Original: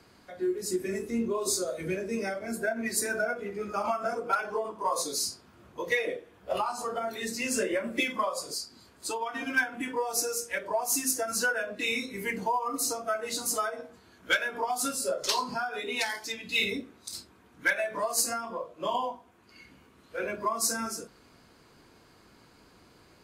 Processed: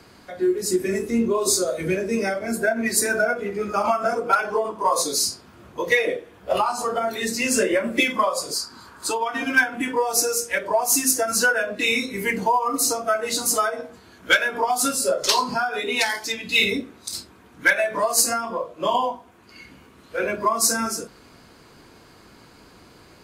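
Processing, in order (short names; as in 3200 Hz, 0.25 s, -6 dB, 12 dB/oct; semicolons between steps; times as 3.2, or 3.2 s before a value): 8.55–9.1 band shelf 1200 Hz +10 dB 1.1 oct; gain +8.5 dB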